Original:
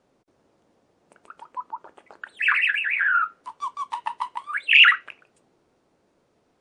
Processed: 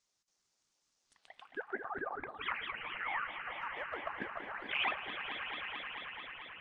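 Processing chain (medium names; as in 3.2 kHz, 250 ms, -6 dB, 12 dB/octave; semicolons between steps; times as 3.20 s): echo with a slow build-up 110 ms, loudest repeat 5, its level -11 dB; band-pass sweep 6.1 kHz -> 330 Hz, 1.02–2.57 s; ring modulator with a swept carrier 400 Hz, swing 75%, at 4.5 Hz; trim +6 dB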